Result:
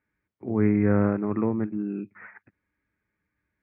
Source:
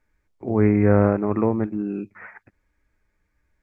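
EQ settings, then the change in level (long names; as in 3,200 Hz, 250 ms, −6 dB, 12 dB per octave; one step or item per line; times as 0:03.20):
band-pass filter 130–2,200 Hz
parametric band 660 Hz −9 dB 1.8 octaves
0.0 dB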